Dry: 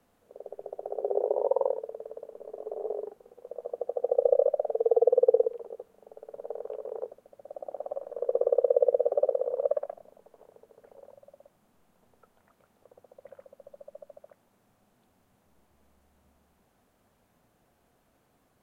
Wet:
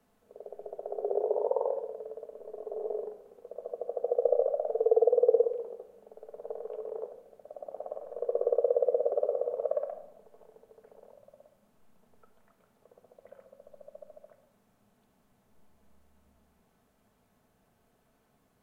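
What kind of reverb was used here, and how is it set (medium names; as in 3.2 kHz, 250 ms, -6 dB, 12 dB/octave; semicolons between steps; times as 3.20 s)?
simulated room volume 2200 m³, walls furnished, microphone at 1.5 m; trim -3 dB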